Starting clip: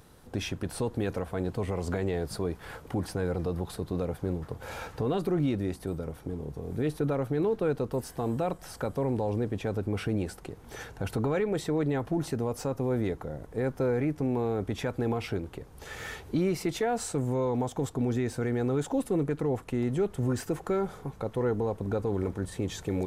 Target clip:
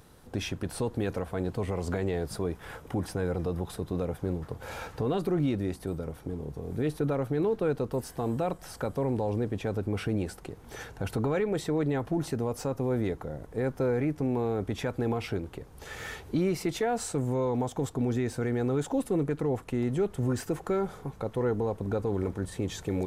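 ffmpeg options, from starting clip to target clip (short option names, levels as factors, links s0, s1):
-filter_complex "[0:a]asettb=1/sr,asplit=3[s0][s1][s2];[s0]atrim=end=2.304[s3];[s1]atrim=start=2.3:end=4.22,asetpts=PTS-STARTPTS,afade=t=in:d=0.004:c=qsin,afade=t=out:st=1.916:d=0.004:c=qsin,bandreject=f=4400:w=11[s4];[s2]atrim=start=4.216[s5];[s3][s4]acrossfade=d=0.004:c1=hsin:c2=qsin[s6];[s6][s5]acrossfade=d=0.004:c1=qsin:c2=hsin"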